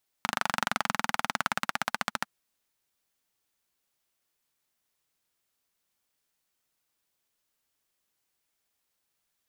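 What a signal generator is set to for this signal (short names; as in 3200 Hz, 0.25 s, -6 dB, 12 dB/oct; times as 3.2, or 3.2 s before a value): single-cylinder engine model, changing speed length 2.00 s, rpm 3000, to 1600, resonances 220/880/1300 Hz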